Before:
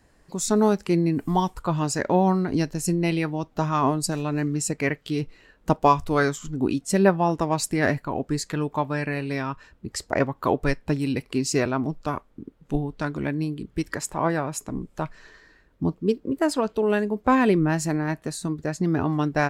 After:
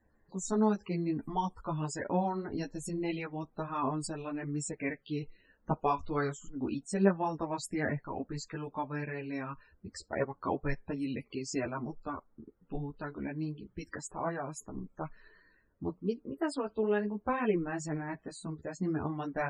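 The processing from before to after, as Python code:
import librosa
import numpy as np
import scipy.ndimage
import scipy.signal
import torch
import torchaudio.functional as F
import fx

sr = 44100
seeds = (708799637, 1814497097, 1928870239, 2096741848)

y = fx.spec_topn(x, sr, count=64)
y = fx.ensemble(y, sr)
y = y * 10.0 ** (-7.5 / 20.0)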